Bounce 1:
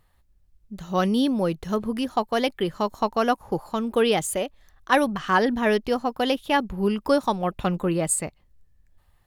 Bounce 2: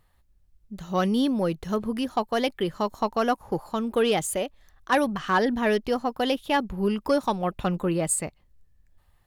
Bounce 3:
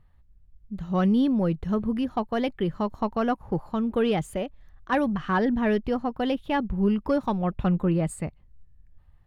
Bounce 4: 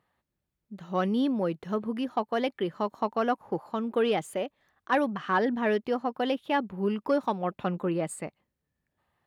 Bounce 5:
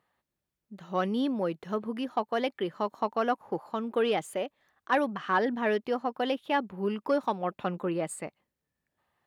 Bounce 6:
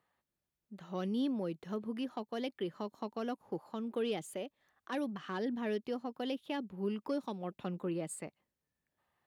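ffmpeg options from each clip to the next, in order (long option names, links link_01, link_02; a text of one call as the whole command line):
ffmpeg -i in.wav -af "asoftclip=type=tanh:threshold=-10.5dB,volume=-1dB" out.wav
ffmpeg -i in.wav -af "bass=frequency=250:gain=10,treble=frequency=4000:gain=-13,volume=-3dB" out.wav
ffmpeg -i in.wav -af "highpass=300" out.wav
ffmpeg -i in.wav -af "lowshelf=frequency=200:gain=-7" out.wav
ffmpeg -i in.wav -filter_complex "[0:a]acrossover=split=430|3000[link_01][link_02][link_03];[link_02]acompressor=threshold=-45dB:ratio=2.5[link_04];[link_01][link_04][link_03]amix=inputs=3:normalize=0,volume=-4dB" out.wav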